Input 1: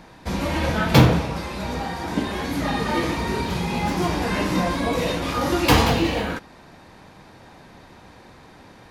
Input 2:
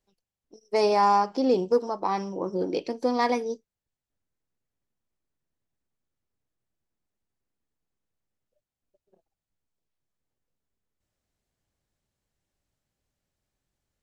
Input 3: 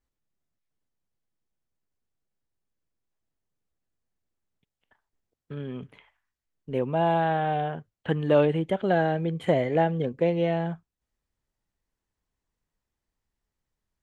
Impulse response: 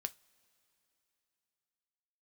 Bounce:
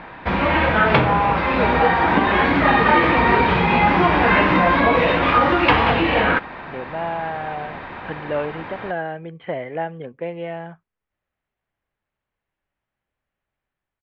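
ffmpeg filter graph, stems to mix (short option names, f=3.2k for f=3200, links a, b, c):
-filter_complex "[0:a]acompressor=threshold=-23dB:ratio=4,volume=2.5dB[a];[1:a]adelay=100,volume=-9dB[b];[2:a]volume=-13.5dB[c];[a][b][c]amix=inputs=3:normalize=0,lowpass=f=3.1k:w=0.5412,lowpass=f=3.1k:w=1.3066,equalizer=f=1.5k:w=0.4:g=10,dynaudnorm=f=120:g=7:m=4.5dB"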